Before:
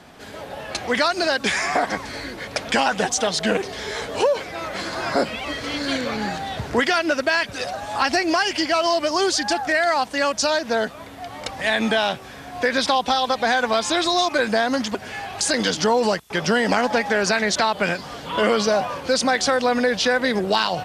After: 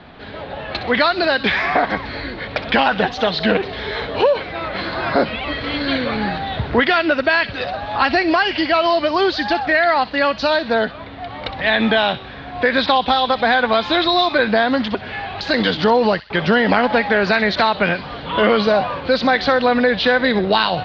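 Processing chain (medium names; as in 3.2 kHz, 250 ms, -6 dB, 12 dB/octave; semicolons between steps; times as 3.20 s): elliptic low-pass 4.1 kHz, stop band 60 dB; bass shelf 110 Hz +7.5 dB; feedback echo behind a high-pass 63 ms, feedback 40%, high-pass 2.6 kHz, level -10 dB; trim +4.5 dB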